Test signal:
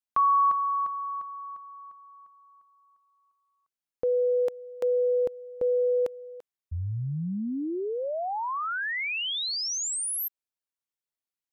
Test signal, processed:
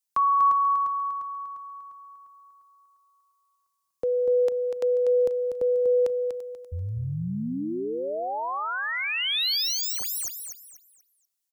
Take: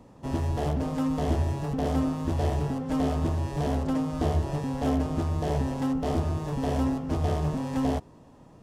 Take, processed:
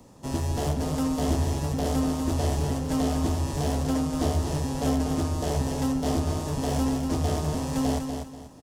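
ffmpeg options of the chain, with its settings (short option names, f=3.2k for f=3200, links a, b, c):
-filter_complex "[0:a]acrossover=split=130|4500[a][b][c];[c]aeval=exprs='0.0447*sin(PI/2*2.51*val(0)/0.0447)':c=same[d];[a][b][d]amix=inputs=3:normalize=0,aecho=1:1:243|486|729|972:0.473|0.137|0.0398|0.0115"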